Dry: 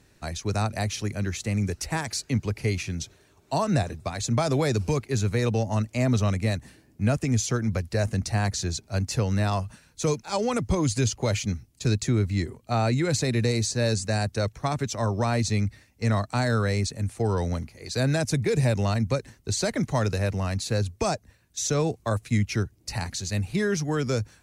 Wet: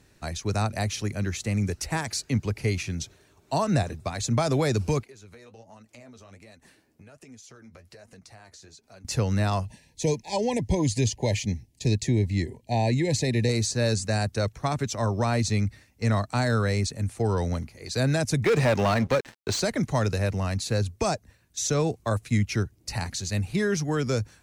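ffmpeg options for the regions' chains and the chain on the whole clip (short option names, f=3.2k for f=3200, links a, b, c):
-filter_complex "[0:a]asettb=1/sr,asplit=3[a][b][c];[a]atrim=end=5.034[d];[b]atrim=start=5.03:end=9.05,asetpts=PTS-STARTPTS,afade=t=in:d=0.004:c=qsin,afade=t=out:st=4.016:d=0.004:c=qsin,bass=f=250:g=-10,treble=f=4k:g=-1,acompressor=threshold=-42dB:ratio=8:attack=3.2:release=140:knee=1:detection=peak,flanger=delay=3.9:depth=9.4:regen=44:speed=1.3:shape=sinusoidal[e];[c]atrim=start=9.046[f];[d][e]acrossfade=d=0.004:c1=hsin:c2=qsin[g];[g][f]acrossfade=d=0.004:c1=qsin:c2=hsin,asettb=1/sr,asplit=3[h][i][j];[h]atrim=end=9.654[k];[i]atrim=start=9.65:end=13.49,asetpts=PTS-STARTPTS,afade=t=in:d=0.004:c=qsin,afade=t=out:st=3.836:d=0.004:c=qsin,asuperstop=centerf=1300:order=20:qfactor=2,highshelf=f=10k:g=-5.5[l];[j]atrim=start=13.486[m];[k][l]acrossfade=d=0.004:c1=hsin:c2=qsin[n];[n][m]acrossfade=d=0.004:c1=qsin:c2=hsin,asettb=1/sr,asplit=3[o][p][q];[o]atrim=end=18.444[r];[p]atrim=start=18.44:end=19.6,asetpts=PTS-STARTPTS,afade=t=in:d=0.004:c=qsin,afade=t=out:st=1.156:d=0.004:c=qsin,highshelf=f=6.4k:g=-7.5,asplit=2[s][t];[t]highpass=f=720:p=1,volume=21dB,asoftclip=type=tanh:threshold=-13dB[u];[s][u]amix=inputs=2:normalize=0,lowpass=f=3k:p=1,volume=-6dB,aeval=exprs='sgn(val(0))*max(abs(val(0))-0.00944,0)':c=same[v];[q]atrim=start=19.596[w];[r][v]acrossfade=d=0.004:c1=hsin:c2=qsin[x];[x][w]acrossfade=d=0.004:c1=qsin:c2=hsin"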